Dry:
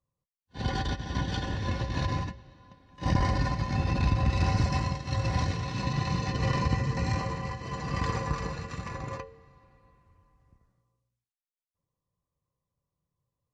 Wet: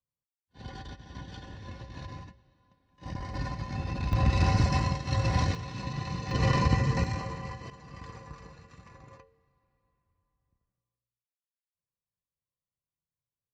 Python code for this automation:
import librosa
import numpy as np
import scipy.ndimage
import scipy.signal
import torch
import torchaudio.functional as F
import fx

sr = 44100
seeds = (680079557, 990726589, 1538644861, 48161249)

y = fx.gain(x, sr, db=fx.steps((0.0, -12.5), (3.34, -6.0), (4.13, 1.5), (5.55, -5.5), (6.31, 2.5), (7.04, -4.0), (7.7, -15.0)))